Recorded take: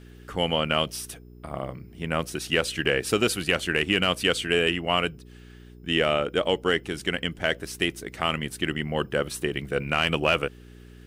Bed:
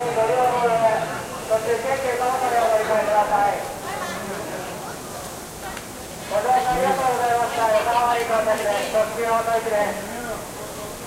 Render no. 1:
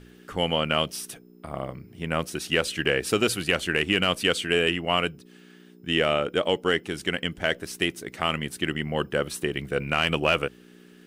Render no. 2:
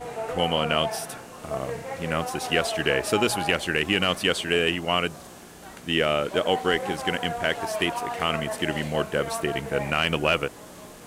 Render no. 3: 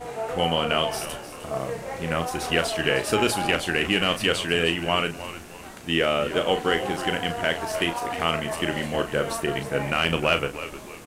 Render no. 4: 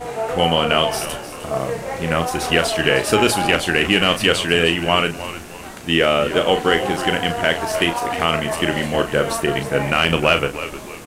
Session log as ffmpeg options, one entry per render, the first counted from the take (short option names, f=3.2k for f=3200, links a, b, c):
-af "bandreject=f=60:t=h:w=4,bandreject=f=120:t=h:w=4"
-filter_complex "[1:a]volume=-12dB[a];[0:a][a]amix=inputs=2:normalize=0"
-filter_complex "[0:a]asplit=2[a][b];[b]adelay=36,volume=-9dB[c];[a][c]amix=inputs=2:normalize=0,asplit=4[d][e][f][g];[e]adelay=308,afreqshift=-87,volume=-13dB[h];[f]adelay=616,afreqshift=-174,volume=-22.1dB[i];[g]adelay=924,afreqshift=-261,volume=-31.2dB[j];[d][h][i][j]amix=inputs=4:normalize=0"
-af "volume=6.5dB,alimiter=limit=-2dB:level=0:latency=1"